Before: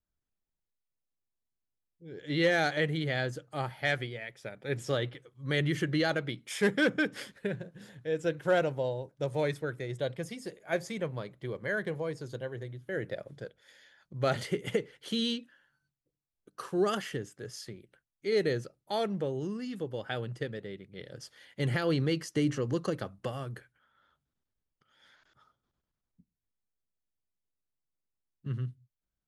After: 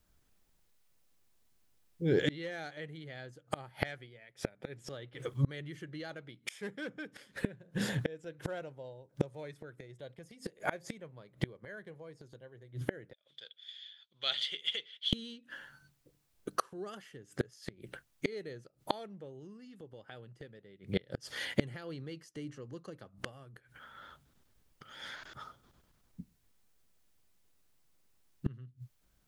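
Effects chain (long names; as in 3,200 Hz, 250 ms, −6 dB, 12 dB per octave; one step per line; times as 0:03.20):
0:13.13–0:15.13: resonant band-pass 3,400 Hz, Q 9.9
gate with flip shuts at −33 dBFS, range −32 dB
level +17 dB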